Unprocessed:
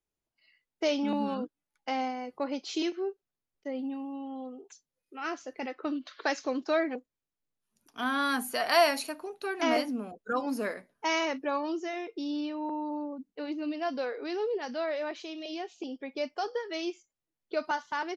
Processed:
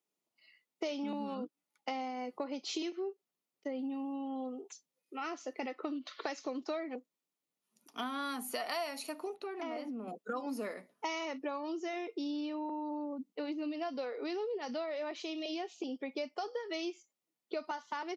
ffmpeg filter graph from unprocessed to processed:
-filter_complex "[0:a]asettb=1/sr,asplit=3[a][b][c];[a]atrim=end=9.364[d];[b]atrim=start=9.36:end=10.08,asetpts=PTS-STARTPTS,afade=t=in:d=0.004:c=qsin,afade=t=out:st=0.716:d=0.004:c=qsin,lowpass=f=1.8k:p=1,bandreject=f=50:t=h:w=6,bandreject=f=100:t=h:w=6,bandreject=f=150:t=h:w=6,bandreject=f=200:t=h:w=6,bandreject=f=250:t=h:w=6,acompressor=threshold=-41dB:ratio=3:attack=3.2:release=140:knee=1:detection=peak[e];[c]atrim=start=10.076[f];[d][e]acrossfade=d=0.004:c1=hsin:c2=qsin[g];[g][f]acrossfade=d=0.004:c1=qsin:c2=hsin,acompressor=threshold=-37dB:ratio=6,highpass=f=170:w=0.5412,highpass=f=170:w=1.3066,bandreject=f=1.6k:w=6.3,volume=2dB"

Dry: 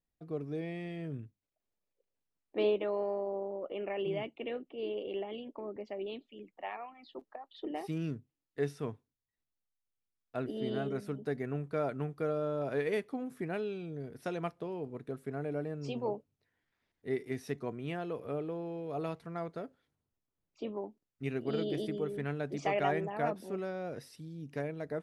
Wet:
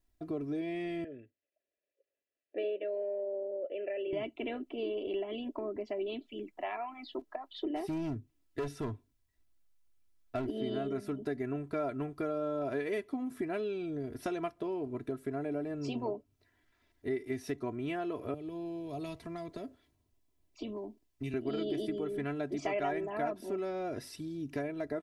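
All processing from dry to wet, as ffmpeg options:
-filter_complex "[0:a]asettb=1/sr,asplit=3[a][b][c];[a]atrim=end=1.044[d];[b]atrim=start=1.04:end=4.13,asetpts=PTS-STARTPTS,afade=t=in:d=0.004:c=qsin,afade=t=out:st=3.086:d=0.004:c=qsin,acontrast=38,asplit=3[e][f][g];[e]bandpass=f=530:t=q:w=8,volume=0dB[h];[f]bandpass=f=1.84k:t=q:w=8,volume=-6dB[i];[g]bandpass=f=2.48k:t=q:w=8,volume=-9dB[j];[h][i][j]amix=inputs=3:normalize=0[k];[c]atrim=start=4.126[l];[d][k]acrossfade=d=0.004:c1=hsin:c2=qsin[m];[m][l]acrossfade=d=0.004:c1=qsin:c2=hsin,asettb=1/sr,asplit=3[n][o][p];[n]atrim=end=7.764[q];[o]atrim=start=7.76:end=10.5,asetpts=PTS-STARTPTS,afade=t=in:d=0.004:c=qsin,afade=t=out:st=2.736:d=0.004:c=qsin,lowshelf=f=190:g=5.5,volume=32dB,asoftclip=hard,volume=-32dB[r];[p]atrim=start=10.496[s];[q][r]acrossfade=d=0.004:c1=hsin:c2=qsin[t];[t][s]acrossfade=d=0.004:c1=qsin:c2=hsin,asettb=1/sr,asplit=3[u][v][w];[u]atrim=end=18.344[x];[v]atrim=start=18.34:end=21.34,asetpts=PTS-STARTPTS,afade=t=in:d=0.004:c=qsin,afade=t=out:st=2.996:d=0.004:c=qsin,acrossover=split=180|3000[y][z][aa];[z]acompressor=threshold=-47dB:ratio=6:attack=3.2:release=140:knee=2.83:detection=peak[ab];[y][ab][aa]amix=inputs=3:normalize=0,equalizer=f=1.4k:w=4.5:g=-8[ac];[w]atrim=start=21.336[ad];[x][ac]acrossfade=d=0.004:c1=hsin:c2=qsin[ae];[ae][ad]acrossfade=d=0.004:c1=qsin:c2=hsin,lowshelf=f=190:g=5.5,aecho=1:1:3:0.7,acompressor=threshold=-42dB:ratio=2.5,volume=6dB"

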